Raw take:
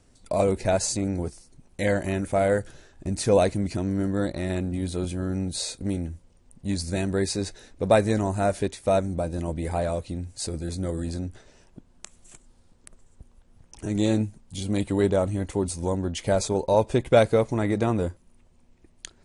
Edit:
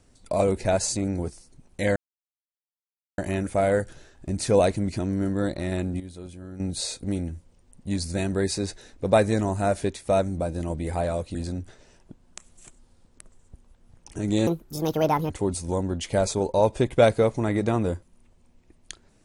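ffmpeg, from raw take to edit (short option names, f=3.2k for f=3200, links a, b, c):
-filter_complex "[0:a]asplit=7[a][b][c][d][e][f][g];[a]atrim=end=1.96,asetpts=PTS-STARTPTS,afade=t=out:st=1.956:d=0.004:c=hsin,apad=pad_dur=1.22[h];[b]atrim=start=1.96:end=4.782,asetpts=PTS-STARTPTS,afade=t=in:d=0.004:c=hsin[i];[c]atrim=start=4.778:end=5.382,asetpts=PTS-STARTPTS,volume=-11.5dB[j];[d]atrim=start=5.378:end=10.132[k];[e]atrim=start=11.018:end=14.144[l];[f]atrim=start=14.14:end=15.44,asetpts=PTS-STARTPTS,asetrate=69237,aresample=44100[m];[g]atrim=start=15.436[n];[h][i]concat=n=2:v=0:a=1[o];[o][j]acrossfade=d=0.004:c1=hsin:c2=hsin[p];[p][k]acrossfade=d=0.004:c1=hsin:c2=hsin[q];[q][l]acrossfade=d=0.004:c1=hsin:c2=hsin[r];[r][m]acrossfade=d=0.004:c1=hsin:c2=hsin[s];[s][n]acrossfade=d=0.004:c1=hsin:c2=hsin"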